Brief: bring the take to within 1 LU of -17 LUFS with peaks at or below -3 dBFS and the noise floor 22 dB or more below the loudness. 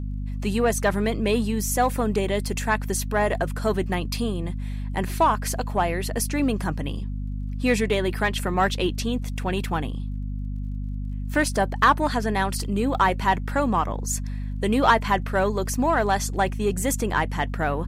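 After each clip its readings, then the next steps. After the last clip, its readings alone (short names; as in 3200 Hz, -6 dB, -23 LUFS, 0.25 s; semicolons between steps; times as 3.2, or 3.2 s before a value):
ticks 25/s; hum 50 Hz; harmonics up to 250 Hz; hum level -27 dBFS; loudness -24.5 LUFS; peak -6.5 dBFS; loudness target -17.0 LUFS
-> de-click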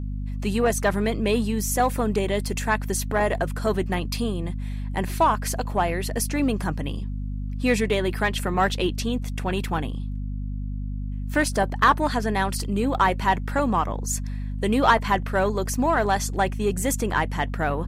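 ticks 0.056/s; hum 50 Hz; harmonics up to 250 Hz; hum level -27 dBFS
-> notches 50/100/150/200/250 Hz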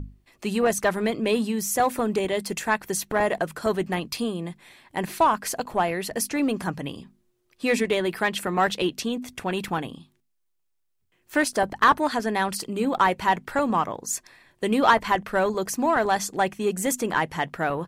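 hum none; loudness -25.0 LUFS; peak -7.0 dBFS; loudness target -17.0 LUFS
-> gain +8 dB; limiter -3 dBFS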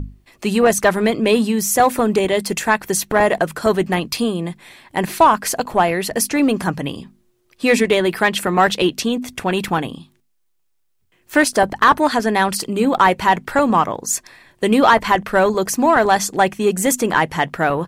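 loudness -17.0 LUFS; peak -3.0 dBFS; noise floor -64 dBFS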